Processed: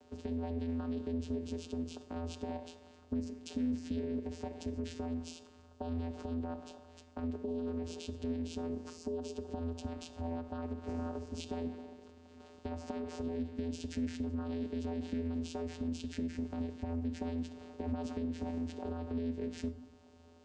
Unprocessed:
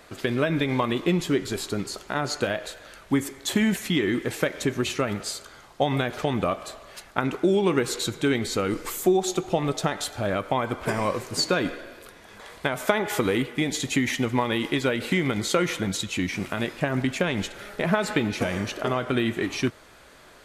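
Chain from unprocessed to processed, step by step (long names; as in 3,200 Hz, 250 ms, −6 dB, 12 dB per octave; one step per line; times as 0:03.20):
parametric band 1,700 Hz −13 dB 1.7 octaves
brickwall limiter −21 dBFS, peak gain reduction 10 dB
downward compressor, threshold −31 dBFS, peak gain reduction 7 dB
channel vocoder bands 8, square 83.4 Hz
convolution reverb RT60 0.70 s, pre-delay 6 ms, DRR 10.5 dB
highs frequency-modulated by the lows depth 0.14 ms
level −1.5 dB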